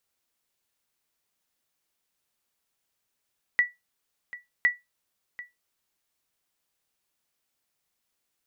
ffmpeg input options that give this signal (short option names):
-f lavfi -i "aevalsrc='0.224*(sin(2*PI*1950*mod(t,1.06))*exp(-6.91*mod(t,1.06)/0.19)+0.126*sin(2*PI*1950*max(mod(t,1.06)-0.74,0))*exp(-6.91*max(mod(t,1.06)-0.74,0)/0.19))':d=2.12:s=44100"